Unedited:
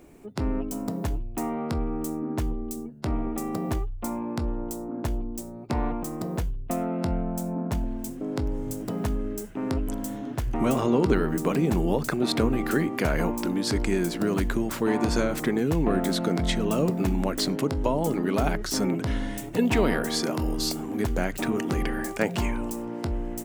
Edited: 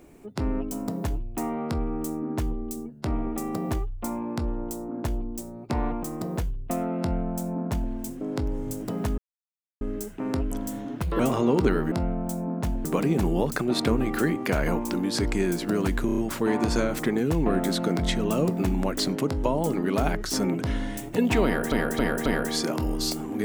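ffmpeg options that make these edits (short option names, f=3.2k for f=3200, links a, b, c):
-filter_complex "[0:a]asplit=13[a][b][c][d][e][f][g][h][i][j][k][l][m];[a]atrim=end=9.18,asetpts=PTS-STARTPTS,afade=t=out:st=9.176:d=0.004:c=hsin,apad=pad_dur=0.63[n];[b]atrim=start=9.18:end=10.384,asetpts=PTS-STARTPTS,afade=t=in:d=0.004:c=hsin[o];[c]atrim=start=10.38:end=10.65,asetpts=PTS-STARTPTS,asetrate=63945,aresample=44100[p];[d]atrim=start=10.646:end=11.372[q];[e]atrim=start=6.998:end=7.932[r];[f]atrim=start=11.368:end=14.612[s];[g]atrim=start=14.578:end=14.612[t];[h]atrim=start=14.578:end=14.612[u];[i]atrim=start=14.578:end=14.612[v];[j]atrim=start=14.578:end=20.122[w];[k]atrim=start=19.848:end=20.122[x];[l]atrim=start=19.848:end=20.122[y];[m]atrim=start=19.848[z];[n][o]concat=n=2:v=0:a=1[aa];[aa][p]acrossfade=d=0.004:c1=hsin:c2=hsin[ab];[ab][q]acrossfade=d=0.004:c1=hsin:c2=hsin[ac];[ac][r]acrossfade=d=0.004:c1=hsin:c2=hsin[ad];[ad][s]acrossfade=d=0.004:c1=hsin:c2=hsin[ae];[ae][t]acrossfade=d=0.004:c1=hsin:c2=hsin[af];[af][u]acrossfade=d=0.004:c1=hsin:c2=hsin[ag];[ag][v]acrossfade=d=0.004:c1=hsin:c2=hsin[ah];[ah][w]acrossfade=d=0.004:c1=hsin:c2=hsin[ai];[ai][x]acrossfade=d=0.004:c1=hsin:c2=hsin[aj];[aj][y]acrossfade=d=0.004:c1=hsin:c2=hsin[ak];[ak][z]acrossfade=d=0.004:c1=hsin:c2=hsin"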